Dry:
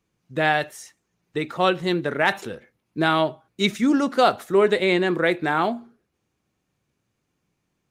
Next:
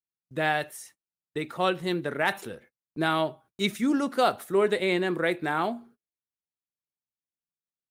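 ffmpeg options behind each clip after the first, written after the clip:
-af "aexciter=amount=3.2:drive=2.9:freq=8.8k,agate=range=-29dB:threshold=-47dB:ratio=16:detection=peak,volume=-5.5dB"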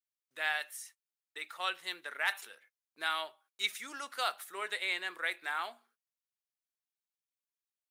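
-af "highpass=1.4k,volume=-2.5dB"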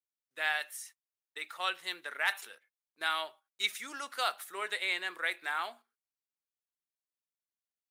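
-af "agate=range=-9dB:threshold=-54dB:ratio=16:detection=peak,volume=1.5dB"

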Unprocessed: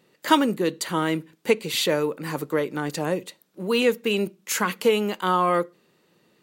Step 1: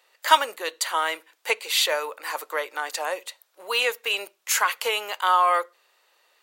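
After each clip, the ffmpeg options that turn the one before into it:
-af "highpass=f=650:w=0.5412,highpass=f=650:w=1.3066,volume=3.5dB"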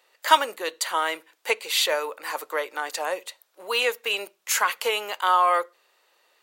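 -af "lowshelf=f=250:g=12,volume=-1dB"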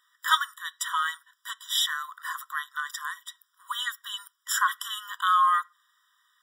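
-af "afftfilt=real='re*eq(mod(floor(b*sr/1024/980),2),1)':imag='im*eq(mod(floor(b*sr/1024/980),2),1)':win_size=1024:overlap=0.75"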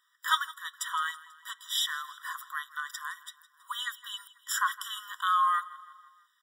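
-af "aecho=1:1:163|326|489|652:0.106|0.0583|0.032|0.0176,volume=-4dB"

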